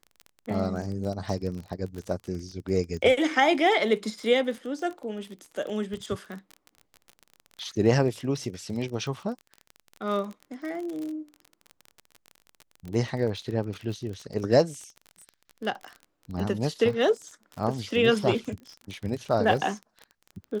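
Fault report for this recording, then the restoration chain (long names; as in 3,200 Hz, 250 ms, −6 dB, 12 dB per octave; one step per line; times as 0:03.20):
surface crackle 30 per second −33 dBFS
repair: click removal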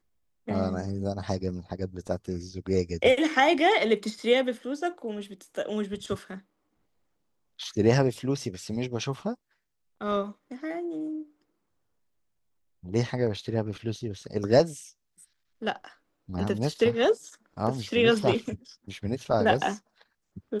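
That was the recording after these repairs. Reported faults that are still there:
none of them is left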